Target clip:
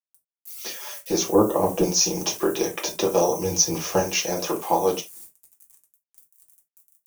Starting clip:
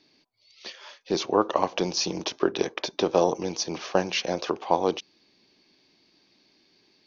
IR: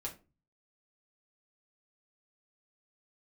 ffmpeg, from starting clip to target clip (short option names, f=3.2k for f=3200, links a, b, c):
-filter_complex "[0:a]asettb=1/sr,asplit=3[a][b][c];[a]atrim=end=1.334[d];[b]atrim=start=1.33:end=1.83,asetpts=PTS-STARTPTS,afade=t=in:d=0.004:c=qsin,afade=t=out:st=0.496:d=0.004:c=qsin,tiltshelf=f=800:g=9.5[e];[c]atrim=start=1.826[f];[d][e]acrossfade=d=0.004:c1=hsin:c2=qsin[g];[g][f]acrossfade=d=0.004:c1=qsin:c2=hsin,agate=range=-33dB:threshold=-56dB:ratio=3:detection=peak,asettb=1/sr,asplit=3[h][i][j];[h]atrim=end=3.344[k];[i]atrim=start=3.34:end=4,asetpts=PTS-STARTPTS,afade=t=in:d=0.004:c=qsin,afade=t=out:st=0.656:d=0.004:c=qsin,equalizer=f=83:t=o:w=1.3:g=13[l];[j]atrim=start=3.996[m];[k][l]acrossfade=d=0.004:c1=hsin:c2=qsin[n];[n][m]acrossfade=d=0.004:c1=qsin:c2=hsin,asplit=2[o][p];[p]acompressor=threshold=-37dB:ratio=6,volume=1dB[q];[o][q]amix=inputs=2:normalize=0,acrusher=bits=8:mix=0:aa=0.000001,aexciter=amount=8:drive=8.2:freq=6.4k[r];[1:a]atrim=start_sample=2205,atrim=end_sample=4410[s];[r][s]afir=irnorm=-1:irlink=0"